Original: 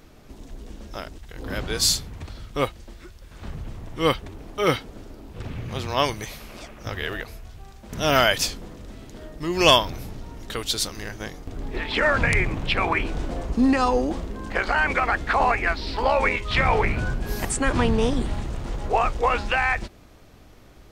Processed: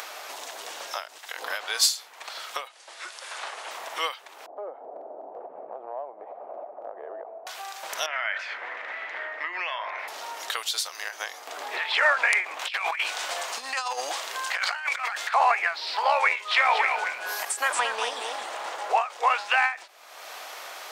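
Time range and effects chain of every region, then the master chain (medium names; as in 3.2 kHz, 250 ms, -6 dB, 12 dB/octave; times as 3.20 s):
2.68–3.71 s: high-pass 300 Hz 24 dB/octave + careless resampling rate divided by 2×, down none, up filtered
4.46–7.47 s: elliptic band-pass 140–710 Hz, stop band 80 dB + compression 2.5:1, threshold -39 dBFS
8.06–10.08 s: de-hum 47.5 Hz, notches 33 + compression 10:1, threshold -30 dBFS + resonant low-pass 2 kHz, resonance Q 4.5
12.59–15.34 s: tilt shelf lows -7 dB, about 1.3 kHz + compressor with a negative ratio -27 dBFS, ratio -0.5
16.35–18.94 s: delay 226 ms -7 dB + tape noise reduction on one side only decoder only
whole clip: high-pass 690 Hz 24 dB/octave; upward compressor, threshold -26 dBFS; endings held to a fixed fall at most 170 dB/s; trim +1.5 dB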